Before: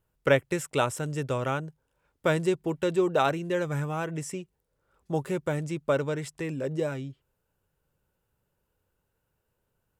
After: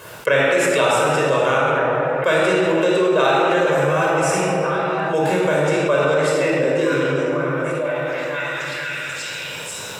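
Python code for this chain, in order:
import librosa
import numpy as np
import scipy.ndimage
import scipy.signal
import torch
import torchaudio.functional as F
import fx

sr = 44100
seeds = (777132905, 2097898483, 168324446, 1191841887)

p1 = fx.weighting(x, sr, curve='A')
p2 = p1 + fx.echo_stepped(p1, sr, ms=488, hz=480.0, octaves=0.7, feedback_pct=70, wet_db=-9.0, dry=0)
p3 = fx.spec_repair(p2, sr, seeds[0], start_s=6.83, length_s=0.52, low_hz=440.0, high_hz=990.0, source='both')
p4 = fx.room_shoebox(p3, sr, seeds[1], volume_m3=2900.0, walls='mixed', distance_m=5.3)
y = fx.env_flatten(p4, sr, amount_pct=70)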